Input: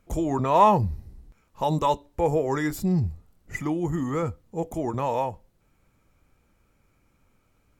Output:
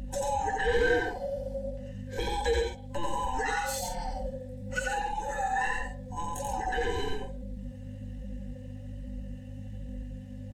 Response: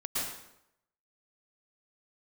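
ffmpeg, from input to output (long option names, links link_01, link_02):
-filter_complex "[0:a]afftfilt=real='real(if(lt(b,1008),b+24*(1-2*mod(floor(b/24),2)),b),0)':imag='imag(if(lt(b,1008),b+24*(1-2*mod(floor(b/24),2)),b),0)':win_size=2048:overlap=0.75,equalizer=frequency=125:width_type=o:width=1:gain=-7,equalizer=frequency=250:width_type=o:width=1:gain=-11,equalizer=frequency=500:width_type=o:width=1:gain=11,equalizer=frequency=2000:width_type=o:width=1:gain=9,equalizer=frequency=4000:width_type=o:width=1:gain=9,equalizer=frequency=8000:width_type=o:width=1:gain=10,acrossover=split=180|4600[link_01][link_02][link_03];[link_01]acontrast=68[link_04];[link_04][link_02][link_03]amix=inputs=3:normalize=0,aeval=exprs='val(0)+0.0224*(sin(2*PI*50*n/s)+sin(2*PI*2*50*n/s)/2+sin(2*PI*3*50*n/s)/3+sin(2*PI*4*50*n/s)/4+sin(2*PI*5*50*n/s)/5)':channel_layout=same,atempo=0.74,asoftclip=type=tanh:threshold=-1.5dB,asuperstop=centerf=650:order=12:qfactor=4.1,equalizer=frequency=1000:width=7.2:gain=-8.5,flanger=delay=3.5:depth=7.6:regen=-31:speed=1.2:shape=sinusoidal,acompressor=threshold=-35dB:ratio=2,aecho=1:1:4:0.48,aecho=1:1:87.46|137:0.708|0.398"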